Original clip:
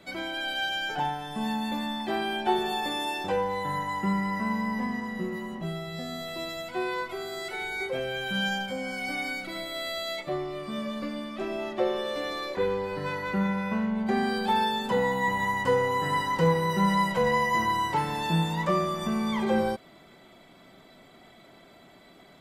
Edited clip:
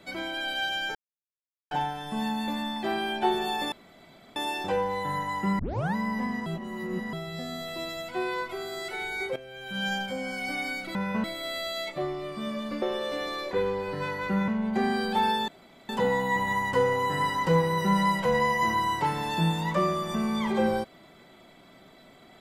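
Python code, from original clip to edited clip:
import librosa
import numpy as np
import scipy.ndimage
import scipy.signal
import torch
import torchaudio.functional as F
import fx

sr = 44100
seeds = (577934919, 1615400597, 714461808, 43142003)

y = fx.edit(x, sr, fx.insert_silence(at_s=0.95, length_s=0.76),
    fx.insert_room_tone(at_s=2.96, length_s=0.64),
    fx.tape_start(start_s=4.19, length_s=0.36),
    fx.reverse_span(start_s=5.06, length_s=0.67),
    fx.fade_in_from(start_s=7.96, length_s=0.56, curve='qua', floor_db=-14.0),
    fx.cut(start_s=11.13, length_s=0.73),
    fx.move(start_s=13.52, length_s=0.29, to_s=9.55),
    fx.insert_room_tone(at_s=14.81, length_s=0.41), tone=tone)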